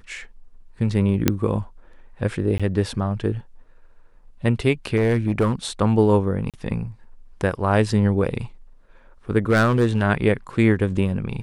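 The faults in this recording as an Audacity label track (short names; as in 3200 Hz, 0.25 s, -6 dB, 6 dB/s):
1.280000	1.280000	pop -2 dBFS
2.580000	2.600000	gap 16 ms
4.960000	5.520000	clipped -13.5 dBFS
6.500000	6.540000	gap 37 ms
9.500000	10.020000	clipped -12 dBFS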